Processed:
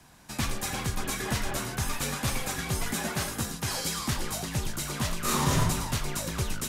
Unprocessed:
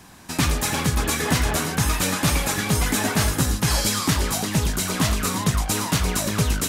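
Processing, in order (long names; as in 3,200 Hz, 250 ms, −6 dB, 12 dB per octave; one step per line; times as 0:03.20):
0:02.93–0:03.99: high-pass filter 140 Hz 12 dB per octave
0:05.20–0:05.60: thrown reverb, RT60 0.88 s, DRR −7.5 dB
frequency shifter −39 Hz
level −8.5 dB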